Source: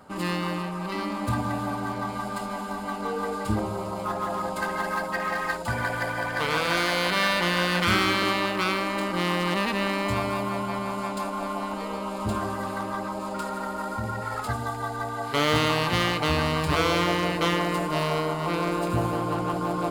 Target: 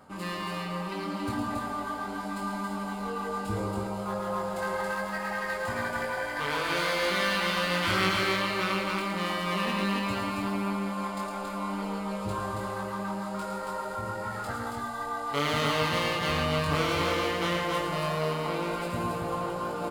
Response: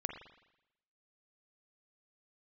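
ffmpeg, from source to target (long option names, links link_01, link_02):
-filter_complex "[0:a]areverse,acompressor=mode=upward:threshold=-28dB:ratio=2.5,areverse,asplit=2[link_01][link_02];[link_02]adelay=21,volume=-3dB[link_03];[link_01][link_03]amix=inputs=2:normalize=0,aecho=1:1:110.8|277:0.501|0.708,volume=-7.5dB"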